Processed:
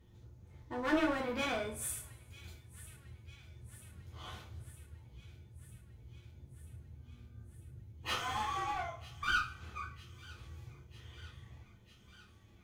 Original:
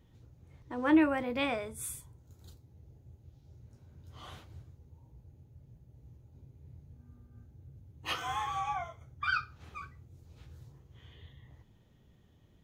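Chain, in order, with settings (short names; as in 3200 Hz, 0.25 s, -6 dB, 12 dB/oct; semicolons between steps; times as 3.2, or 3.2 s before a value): one-sided clip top -35.5 dBFS; on a send: thin delay 0.949 s, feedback 70%, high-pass 2300 Hz, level -16.5 dB; on the sum: two-slope reverb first 0.32 s, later 1.8 s, from -26 dB, DRR -1.5 dB; gain -3 dB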